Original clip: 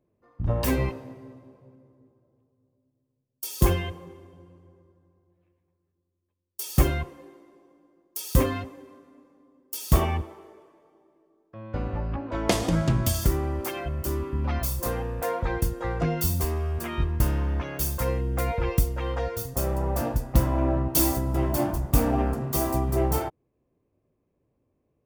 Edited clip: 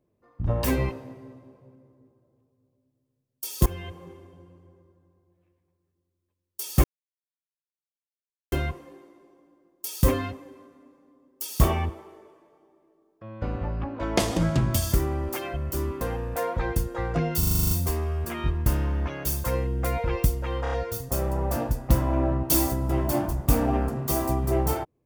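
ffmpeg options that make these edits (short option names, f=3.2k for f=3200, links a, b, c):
-filter_complex "[0:a]asplit=15[a][b][c][d][e][f][g][h][i][j][k][l][m][n][o];[a]atrim=end=3.66,asetpts=PTS-STARTPTS,afade=t=out:st=3.656:d=0.004:c=hsin:silence=0.105925[p];[b]atrim=start=3.66:end=6.84,asetpts=PTS-STARTPTS,afade=t=in:d=0.42:silence=0.105925,afade=t=out:st=3.176:d=0.004:c=hsin,apad=pad_dur=1.68[q];[c]atrim=start=6.84:end=14.332,asetpts=PTS-STARTPTS,afade=t=in:d=0.004:c=hsin[r];[d]atrim=start=14.868:end=16.292[s];[e]atrim=start=16.248:end=16.292[t];[f]atrim=start=16.248:end=16.292[u];[g]atrim=start=16.248:end=16.292[v];[h]atrim=start=16.248:end=16.292[w];[i]atrim=start=16.248:end=16.292[x];[j]atrim=start=16.248:end=16.292[y];[k]atrim=start=16.248:end=16.292[z];[l]atrim=start=16.248:end=19.202[aa];[m]atrim=start=19.168:end=19.202[ab];[n]atrim=start=19.168:end=19.202[ac];[o]atrim=start=19.168[ad];[p][q][r]concat=n=3:v=0:a=1[ae];[ae][s]acrossfade=d=0.004:c1=hsin:c2=hsin[af];[af][t]acrossfade=d=0.004:c1=hsin:c2=hsin[ag];[ag][u]acrossfade=d=0.004:c1=hsin:c2=hsin[ah];[ah][v]acrossfade=d=0.004:c1=hsin:c2=hsin[ai];[ai][w]acrossfade=d=0.004:c1=hsin:c2=hsin[aj];[aj][x]acrossfade=d=0.004:c1=hsin:c2=hsin[ak];[ak][y]acrossfade=d=0.004:c1=hsin:c2=hsin[al];[al][z]acrossfade=d=0.004:c1=hsin:c2=hsin[am];[am][aa]acrossfade=d=0.004:c1=hsin:c2=hsin[an];[an][ab]acrossfade=d=0.004:c1=hsin:c2=hsin[ao];[ao][ac]acrossfade=d=0.004:c1=hsin:c2=hsin[ap];[ap][ad]acrossfade=d=0.004:c1=hsin:c2=hsin"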